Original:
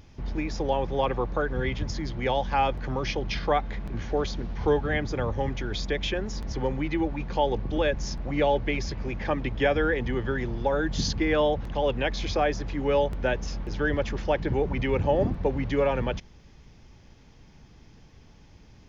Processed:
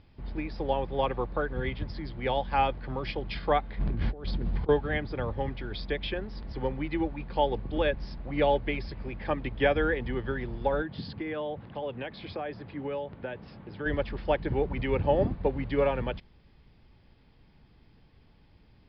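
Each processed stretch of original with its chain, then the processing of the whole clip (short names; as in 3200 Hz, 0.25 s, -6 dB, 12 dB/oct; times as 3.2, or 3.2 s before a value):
3.79–4.69 negative-ratio compressor -34 dBFS + low shelf 370 Hz +8 dB
10.82–13.86 HPF 89 Hz 24 dB/oct + compressor 5:1, threshold -25 dBFS + air absorption 150 m
whole clip: steep low-pass 5000 Hz 96 dB/oct; upward expander 1.5:1, over -32 dBFS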